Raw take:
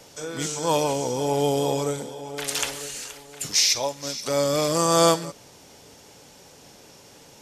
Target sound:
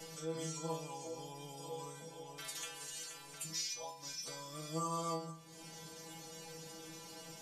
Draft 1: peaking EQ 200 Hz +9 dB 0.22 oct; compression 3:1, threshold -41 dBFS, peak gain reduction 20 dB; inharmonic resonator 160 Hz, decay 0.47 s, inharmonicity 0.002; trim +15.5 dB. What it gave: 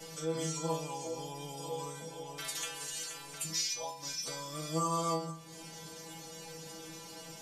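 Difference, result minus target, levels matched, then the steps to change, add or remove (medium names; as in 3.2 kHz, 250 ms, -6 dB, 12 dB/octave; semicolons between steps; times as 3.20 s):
compression: peak gain reduction -6 dB
change: compression 3:1, threshold -50 dBFS, peak gain reduction 26 dB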